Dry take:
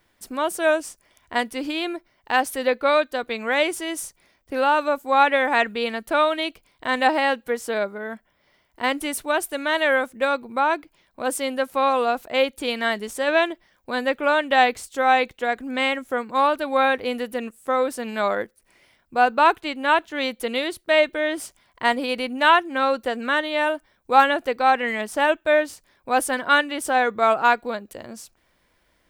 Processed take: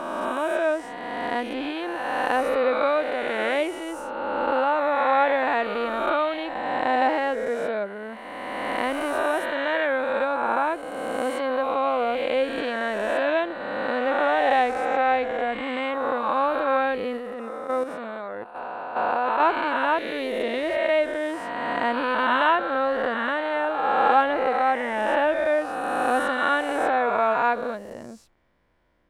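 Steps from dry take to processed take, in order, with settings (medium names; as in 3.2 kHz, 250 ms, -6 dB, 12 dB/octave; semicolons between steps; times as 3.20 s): reverse spectral sustain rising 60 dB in 2.51 s; low-pass 1.1 kHz 6 dB/octave; 17.17–19.40 s: level held to a coarse grid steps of 10 dB; trim -3.5 dB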